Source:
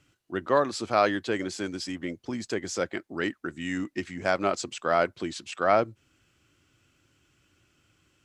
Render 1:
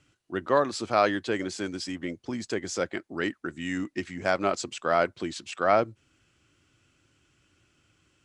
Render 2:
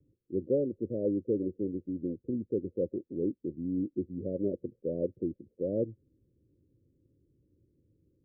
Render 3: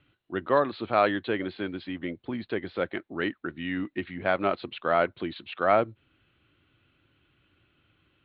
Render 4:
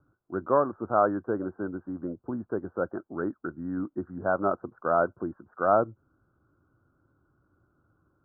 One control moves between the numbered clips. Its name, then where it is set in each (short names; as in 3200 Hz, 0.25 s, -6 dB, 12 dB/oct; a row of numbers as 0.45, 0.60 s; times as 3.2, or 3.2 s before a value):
steep low-pass, frequency: 11000, 540, 4100, 1500 Hz